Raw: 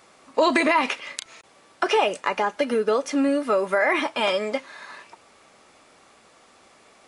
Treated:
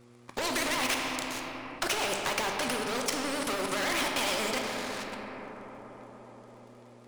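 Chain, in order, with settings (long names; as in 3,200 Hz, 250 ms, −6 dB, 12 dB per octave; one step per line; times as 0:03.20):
pitch vibrato 9.6 Hz 92 cents
leveller curve on the samples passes 3
hum with harmonics 120 Hz, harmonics 4, −50 dBFS
output level in coarse steps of 21 dB
delay with a band-pass on its return 290 ms, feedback 67%, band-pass 650 Hz, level −20 dB
on a send at −3.5 dB: convolution reverb RT60 2.5 s, pre-delay 3 ms
on the sum: every bin compressed towards the loudest bin 2 to 1
level −6.5 dB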